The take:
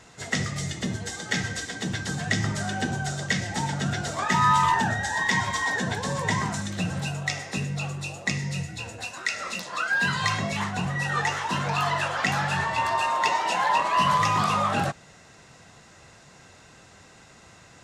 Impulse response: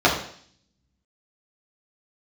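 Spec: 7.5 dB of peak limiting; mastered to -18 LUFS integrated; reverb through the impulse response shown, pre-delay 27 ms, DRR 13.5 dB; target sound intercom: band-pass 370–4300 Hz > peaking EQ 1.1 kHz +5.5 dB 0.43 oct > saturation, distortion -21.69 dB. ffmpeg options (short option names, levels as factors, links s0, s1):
-filter_complex "[0:a]alimiter=limit=0.126:level=0:latency=1,asplit=2[s0][s1];[1:a]atrim=start_sample=2205,adelay=27[s2];[s1][s2]afir=irnorm=-1:irlink=0,volume=0.0178[s3];[s0][s3]amix=inputs=2:normalize=0,highpass=370,lowpass=4300,equalizer=f=1100:t=o:w=0.43:g=5.5,asoftclip=threshold=0.158,volume=3.16"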